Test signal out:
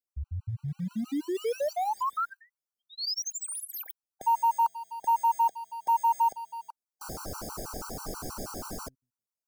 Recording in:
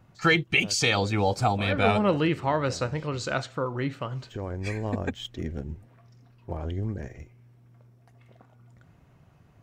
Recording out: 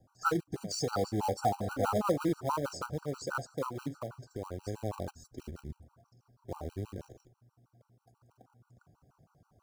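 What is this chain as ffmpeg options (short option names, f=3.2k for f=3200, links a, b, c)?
-filter_complex "[0:a]asuperstop=centerf=2600:order=12:qfactor=0.85,acrossover=split=250|1000|4900[a][b][c][d];[a]flanger=delay=7.6:depth=6.5:regen=88:speed=0.45:shape=sinusoidal[e];[b]acrusher=bits=3:mode=log:mix=0:aa=0.000001[f];[d]asoftclip=type=tanh:threshold=-33dB[g];[e][f][c][g]amix=inputs=4:normalize=0,afftfilt=real='re*gt(sin(2*PI*6.2*pts/sr)*(1-2*mod(floor(b*sr/1024/780),2)),0)':imag='im*gt(sin(2*PI*6.2*pts/sr)*(1-2*mod(floor(b*sr/1024/780),2)),0)':win_size=1024:overlap=0.75,volume=-2.5dB"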